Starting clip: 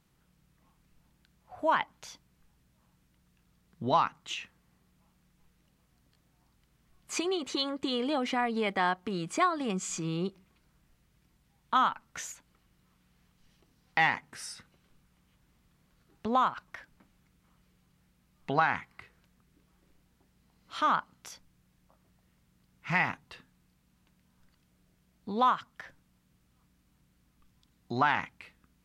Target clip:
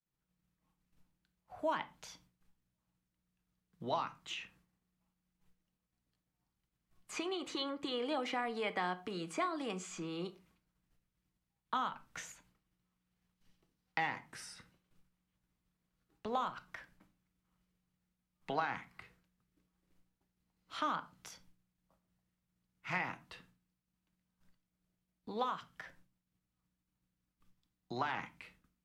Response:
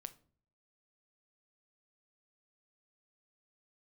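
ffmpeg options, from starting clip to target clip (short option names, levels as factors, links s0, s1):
-filter_complex "[0:a]agate=range=0.0224:threshold=0.00126:ratio=3:detection=peak,acrossover=split=260|530|3200[s0][s1][s2][s3];[s0]acompressor=threshold=0.00355:ratio=4[s4];[s1]acompressor=threshold=0.0112:ratio=4[s5];[s2]acompressor=threshold=0.0251:ratio=4[s6];[s3]acompressor=threshold=0.00447:ratio=4[s7];[s4][s5][s6][s7]amix=inputs=4:normalize=0[s8];[1:a]atrim=start_sample=2205,afade=t=out:st=0.19:d=0.01,atrim=end_sample=8820[s9];[s8][s9]afir=irnorm=-1:irlink=0,volume=1.19"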